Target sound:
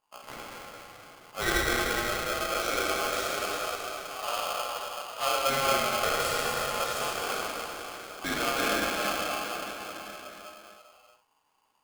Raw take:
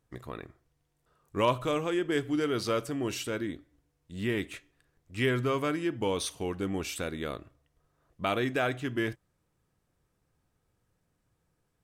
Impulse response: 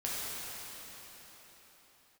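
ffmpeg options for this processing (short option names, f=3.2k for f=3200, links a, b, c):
-filter_complex "[0:a]asettb=1/sr,asplit=3[a][b][c];[a]atrim=end=1.754[d];[b]atrim=start=1.75:end=2.48,asetpts=PTS-STARTPTS,afade=t=in:d=0.004:c=qsin,afade=t=out:st=0.726:d=0.004:c=qsin,acompressor=threshold=-31dB:ratio=6[e];[c]atrim=start=2.476[f];[d][e]acrossfade=d=0.004:c1=hsin:c2=qsin[g];[g][f]acrossfade=d=0.004:c1=qsin:c2=hsin,asettb=1/sr,asplit=3[h][i][j];[h]atrim=end=4.504[k];[i]atrim=start=4.5:end=5.2,asetpts=PTS-STARTPTS,afade=t=in:d=0.004:c=qsin,afade=t=out:st=0.696:d=0.004:c=qsin,lowpass=1.4k[l];[j]atrim=start=5.196[m];[k][l]acrossfade=d=0.004:c1=hsin:c2=qsin[n];[n][m]acrossfade=d=0.004:c1=qsin:c2=hsin[o];[1:a]atrim=start_sample=2205[p];[o][p]afir=irnorm=-1:irlink=0,aeval=exprs='val(0)*sgn(sin(2*PI*950*n/s))':c=same,volume=-3.5dB"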